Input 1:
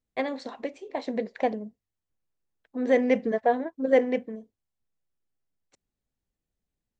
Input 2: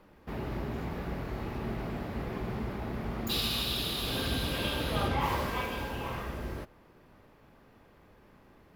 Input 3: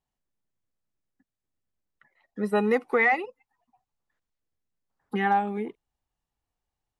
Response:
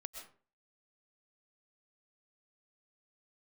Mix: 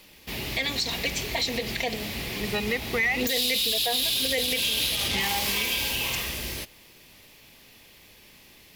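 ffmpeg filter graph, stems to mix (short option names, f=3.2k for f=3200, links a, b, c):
-filter_complex "[0:a]highpass=f=590:p=1,aecho=1:1:4.3:0.91,adelay=400,volume=2.5dB[a];[1:a]volume=28.5dB,asoftclip=hard,volume=-28.5dB,volume=0dB[b];[2:a]lowpass=4.2k,volume=-5.5dB[c];[a][b][c]amix=inputs=3:normalize=0,aexciter=amount=4.8:drive=9.4:freq=2.1k,alimiter=limit=-16.5dB:level=0:latency=1:release=117"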